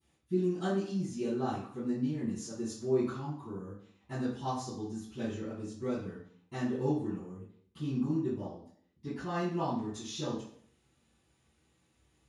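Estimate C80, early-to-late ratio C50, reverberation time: 6.5 dB, 2.5 dB, 0.60 s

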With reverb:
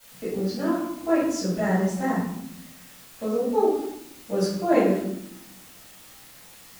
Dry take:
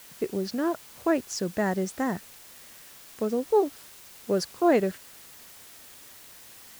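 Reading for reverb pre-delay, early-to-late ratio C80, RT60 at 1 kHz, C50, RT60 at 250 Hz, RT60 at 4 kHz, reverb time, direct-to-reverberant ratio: 3 ms, 5.0 dB, 0.75 s, 1.0 dB, 1.3 s, 0.50 s, 0.80 s, -14.5 dB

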